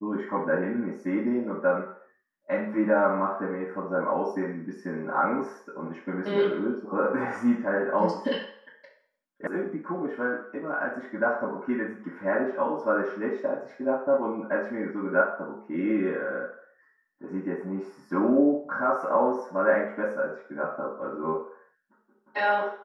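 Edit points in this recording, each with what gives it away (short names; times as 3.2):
9.47 sound cut off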